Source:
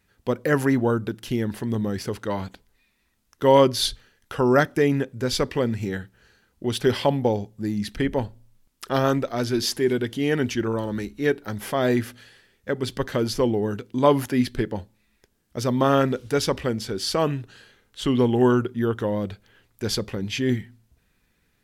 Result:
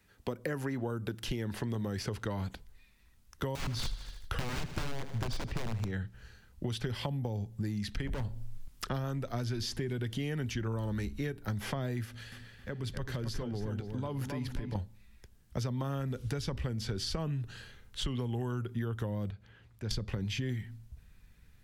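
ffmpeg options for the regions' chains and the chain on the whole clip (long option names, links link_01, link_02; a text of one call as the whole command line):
ffmpeg -i in.wav -filter_complex "[0:a]asettb=1/sr,asplit=3[link_01][link_02][link_03];[link_01]atrim=end=3.554[link_04];[link_02]atrim=start=3.55:end=5.91,asetpts=PTS-STARTPTS,afade=type=in:duration=0.004:curve=qsin,afade=type=out:start_time=2.356:duration=0.004:curve=qsin,lowshelf=frequency=81:gain=10.5,aeval=exprs='(mod(6.31*val(0)+1,2)-1)/6.31':channel_layout=same,aecho=1:1:77|154|231|308|385:0.178|0.0889|0.0445|0.0222|0.0111,atrim=end_sample=104076[link_05];[link_03]atrim=start=5.906[link_06];[link_04][link_05]acrossfade=duration=0.004:curve1=hsin:curve2=qsin[link_07];[link_07][link_06]acrossfade=duration=0.004:curve1=qsin:curve2=hsin,asettb=1/sr,asplit=3[link_08][link_09][link_10];[link_08]atrim=end=8.074[link_11];[link_09]atrim=start=8.07:end=8.87,asetpts=PTS-STARTPTS,afade=type=in:duration=0.004:curve=qsin,afade=type=out:start_time=0.796:duration=0.004:curve=qsin,acontrast=47,asoftclip=type=hard:threshold=-24dB[link_12];[link_10]atrim=start=8.866[link_13];[link_11][link_12]acrossfade=duration=0.004:curve1=hsin:curve2=qsin[link_14];[link_14][link_13]acrossfade=duration=0.004:curve1=qsin:curve2=hsin,asettb=1/sr,asplit=3[link_15][link_16][link_17];[link_15]atrim=end=12.054[link_18];[link_16]atrim=start=12.05:end=14.75,asetpts=PTS-STARTPTS,afade=type=in:duration=0.004:curve=qsin,afade=type=out:start_time=2.696:duration=0.004:curve=qsin,acompressor=threshold=-41dB:ratio=2.5:attack=3.2:release=140:knee=1:detection=peak,asplit=2[link_19][link_20];[link_20]adelay=268,lowpass=frequency=3100:poles=1,volume=-6dB,asplit=2[link_21][link_22];[link_22]adelay=268,lowpass=frequency=3100:poles=1,volume=0.41,asplit=2[link_23][link_24];[link_24]adelay=268,lowpass=frequency=3100:poles=1,volume=0.41,asplit=2[link_25][link_26];[link_26]adelay=268,lowpass=frequency=3100:poles=1,volume=0.41,asplit=2[link_27][link_28];[link_28]adelay=268,lowpass=frequency=3100:poles=1,volume=0.41[link_29];[link_19][link_21][link_23][link_25][link_27][link_29]amix=inputs=6:normalize=0,atrim=end_sample=119070[link_30];[link_17]atrim=start=14.746[link_31];[link_18][link_30]acrossfade=duration=0.004:curve1=hsin:curve2=qsin[link_32];[link_32][link_31]acrossfade=duration=0.004:curve1=qsin:curve2=hsin,asettb=1/sr,asplit=3[link_33][link_34][link_35];[link_33]atrim=end=19.304[link_36];[link_34]atrim=start=19.3:end=19.91,asetpts=PTS-STARTPTS,afade=type=in:duration=0.004:curve=qsin,afade=type=out:start_time=0.606:duration=0.004:curve=qsin,highpass=67,acompressor=threshold=-58dB:ratio=1.5:attack=3.2:release=140:knee=1:detection=peak,aemphasis=mode=reproduction:type=50kf[link_37];[link_35]atrim=start=19.906[link_38];[link_36][link_37]acrossfade=duration=0.004:curve1=hsin:curve2=qsin[link_39];[link_39][link_38]acrossfade=duration=0.004:curve1=qsin:curve2=hsin,acrossover=split=170|370|7200[link_40][link_41][link_42][link_43];[link_40]acompressor=threshold=-39dB:ratio=4[link_44];[link_41]acompressor=threshold=-36dB:ratio=4[link_45];[link_42]acompressor=threshold=-34dB:ratio=4[link_46];[link_43]acompressor=threshold=-54dB:ratio=4[link_47];[link_44][link_45][link_46][link_47]amix=inputs=4:normalize=0,asubboost=boost=4.5:cutoff=140,acompressor=threshold=-31dB:ratio=6" out.wav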